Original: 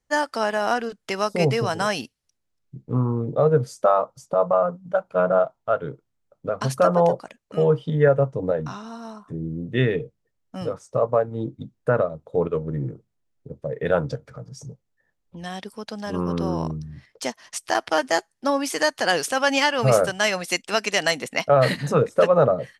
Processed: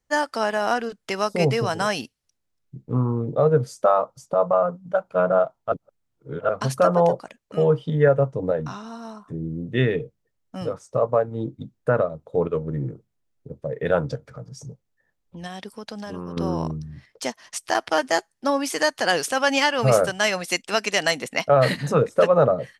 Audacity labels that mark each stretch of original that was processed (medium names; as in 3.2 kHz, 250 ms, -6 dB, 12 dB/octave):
5.720000	6.490000	reverse
15.460000	16.370000	compression, threshold -29 dBFS